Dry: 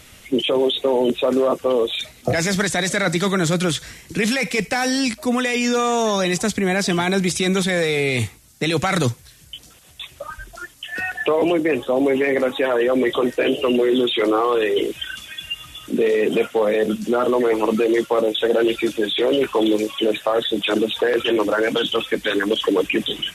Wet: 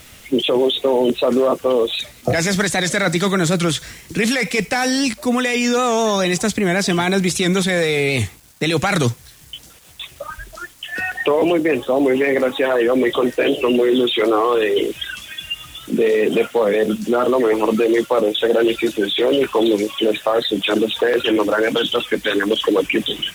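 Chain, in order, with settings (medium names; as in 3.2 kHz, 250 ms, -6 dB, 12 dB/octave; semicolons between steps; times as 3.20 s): word length cut 8-bit, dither none; warped record 78 rpm, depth 100 cents; trim +2 dB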